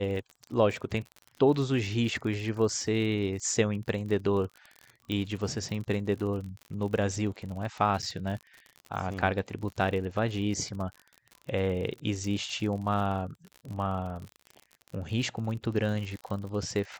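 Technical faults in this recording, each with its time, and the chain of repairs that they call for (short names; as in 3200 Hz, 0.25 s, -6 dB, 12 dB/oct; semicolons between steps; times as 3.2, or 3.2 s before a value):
crackle 46/s -36 dBFS
5.12 pop -20 dBFS
8.02–8.03 gap 7.6 ms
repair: de-click; interpolate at 8.02, 7.6 ms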